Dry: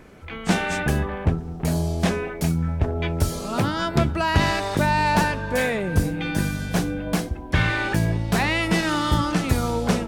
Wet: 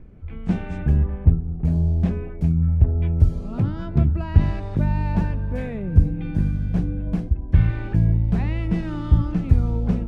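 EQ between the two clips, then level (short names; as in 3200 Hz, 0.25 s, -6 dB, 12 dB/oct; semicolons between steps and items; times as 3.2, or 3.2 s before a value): RIAA curve playback; low shelf 440 Hz +8.5 dB; bell 2500 Hz +3.5 dB 0.51 oct; -15.5 dB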